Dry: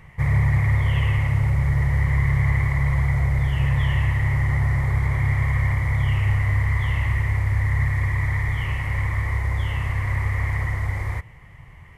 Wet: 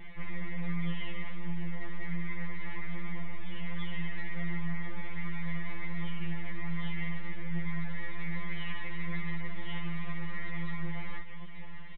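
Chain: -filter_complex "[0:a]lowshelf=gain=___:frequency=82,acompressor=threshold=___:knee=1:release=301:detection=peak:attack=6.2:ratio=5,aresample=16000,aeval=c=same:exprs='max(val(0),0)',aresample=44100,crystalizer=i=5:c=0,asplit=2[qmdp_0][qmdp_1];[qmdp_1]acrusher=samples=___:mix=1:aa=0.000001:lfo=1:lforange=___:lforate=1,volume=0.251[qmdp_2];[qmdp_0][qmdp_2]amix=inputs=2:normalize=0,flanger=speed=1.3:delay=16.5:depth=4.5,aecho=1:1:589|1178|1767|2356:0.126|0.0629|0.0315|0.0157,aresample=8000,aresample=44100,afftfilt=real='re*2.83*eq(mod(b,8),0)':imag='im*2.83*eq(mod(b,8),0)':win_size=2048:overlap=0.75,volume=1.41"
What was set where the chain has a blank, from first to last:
3.5, 0.0316, 27, 27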